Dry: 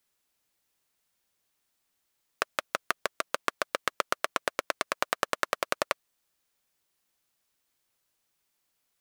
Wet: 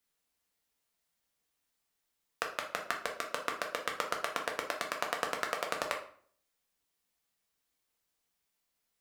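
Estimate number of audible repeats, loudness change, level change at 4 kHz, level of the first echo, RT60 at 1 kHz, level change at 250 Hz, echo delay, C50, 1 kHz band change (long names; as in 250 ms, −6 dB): no echo audible, −4.0 dB, −4.0 dB, no echo audible, 0.50 s, −3.5 dB, no echo audible, 8.5 dB, −4.0 dB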